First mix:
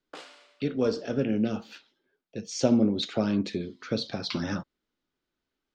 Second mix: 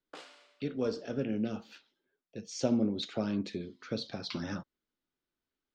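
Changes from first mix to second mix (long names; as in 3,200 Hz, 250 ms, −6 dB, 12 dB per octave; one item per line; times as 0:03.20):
speech −6.5 dB
background −4.5 dB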